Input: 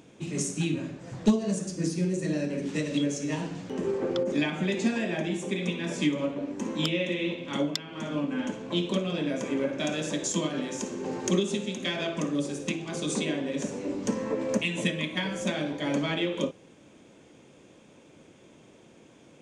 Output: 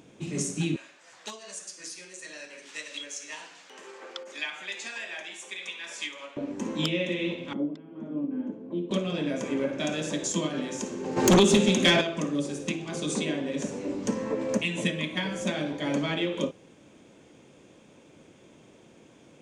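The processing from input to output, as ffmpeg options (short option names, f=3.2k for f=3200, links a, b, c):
-filter_complex "[0:a]asettb=1/sr,asplit=3[a][b][c];[a]atrim=end=0.764[d];[b]atrim=start=0.76:end=6.37,asetpts=PTS-STARTPTS,afade=t=in:d=0.004:c=qsin,afade=t=out:st=5.606:d=0.004:c=qsin,highpass=1.2k[e];[c]atrim=start=6.366[f];[d][e]acrossfade=d=0.004:c1=hsin:c2=qsin[g];[g][f]acrossfade=d=0.004:c1=qsin:c2=hsin,asettb=1/sr,asplit=3[h][i][j];[h]atrim=end=7.534[k];[i]atrim=start=7.53:end=8.91,asetpts=PTS-STARTPTS,afade=t=in:d=0.004:c=qsin,afade=t=out:st=1.376:d=0.004:c=qsin,bandpass=f=290:t=q:w=1.6[l];[j]atrim=start=8.906[m];[k][l]acrossfade=d=0.004:c1=hsin:c2=qsin[n];[n][m]acrossfade=d=0.004:c1=qsin:c2=hsin,asplit=3[o][p][q];[o]afade=t=out:st=11.16:d=0.02[r];[p]aeval=exprs='0.211*sin(PI/2*2.51*val(0)/0.211)':c=same,afade=t=in:st=11.16:d=0.02,afade=t=out:st=12:d=0.02[s];[q]afade=t=in:st=12:d=0.02[t];[r][s][t]amix=inputs=3:normalize=0"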